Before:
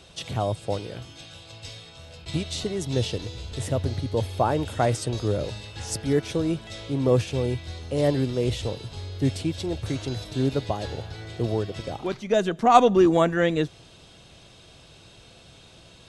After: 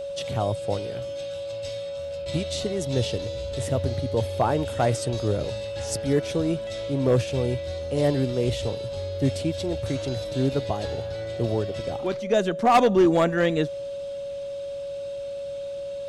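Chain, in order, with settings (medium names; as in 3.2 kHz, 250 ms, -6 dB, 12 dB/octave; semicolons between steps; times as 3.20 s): whistle 560 Hz -30 dBFS; overload inside the chain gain 12 dB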